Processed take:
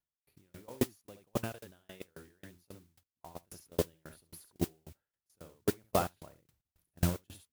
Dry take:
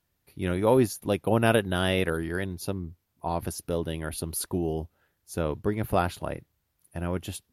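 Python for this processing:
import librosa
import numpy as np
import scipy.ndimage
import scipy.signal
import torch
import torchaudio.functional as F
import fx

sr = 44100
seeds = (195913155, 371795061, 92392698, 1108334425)

p1 = fx.rider(x, sr, range_db=4, speed_s=2.0)
p2 = fx.low_shelf(p1, sr, hz=410.0, db=7.0, at=(6.32, 7.1))
p3 = p2 + fx.room_early_taps(p2, sr, ms=(35, 51, 69), db=(-16.5, -16.0, -6.0), dry=0)
p4 = fx.level_steps(p3, sr, step_db=23)
p5 = fx.mod_noise(p4, sr, seeds[0], snr_db=11)
y = fx.tremolo_decay(p5, sr, direction='decaying', hz=3.7, depth_db=34)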